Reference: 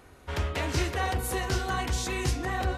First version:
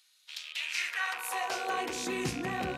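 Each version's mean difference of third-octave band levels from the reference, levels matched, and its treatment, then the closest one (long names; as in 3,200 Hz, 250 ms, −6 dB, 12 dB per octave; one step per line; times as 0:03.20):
9.5 dB: loose part that buzzes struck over −34 dBFS, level −25 dBFS
high-pass filter sweep 3,900 Hz → 180 Hz, 0:00.42–0:02.33
level −4 dB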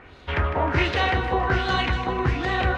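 6.5 dB: auto-filter low-pass sine 1.3 Hz 910–4,000 Hz
echo with a time of its own for lows and highs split 750 Hz, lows 385 ms, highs 155 ms, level −10 dB
level +5.5 dB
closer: second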